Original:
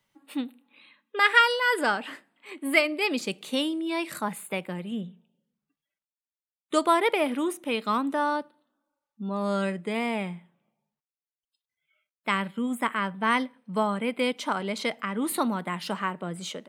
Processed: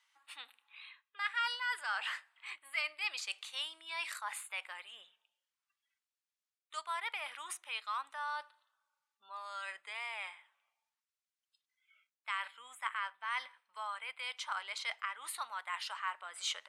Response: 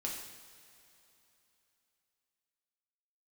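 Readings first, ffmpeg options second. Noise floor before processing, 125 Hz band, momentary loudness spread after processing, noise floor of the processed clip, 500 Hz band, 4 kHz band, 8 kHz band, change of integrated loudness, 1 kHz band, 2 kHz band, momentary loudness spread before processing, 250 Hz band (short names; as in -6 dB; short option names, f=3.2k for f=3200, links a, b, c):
under -85 dBFS, under -40 dB, 14 LU, under -85 dBFS, -28.0 dB, -8.0 dB, -7.0 dB, -12.5 dB, -12.5 dB, -10.5 dB, 13 LU, under -40 dB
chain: -af "lowpass=8.7k,areverse,acompressor=threshold=-33dB:ratio=12,areverse,highpass=f=1k:w=0.5412,highpass=f=1k:w=1.3066,volume=2.5dB"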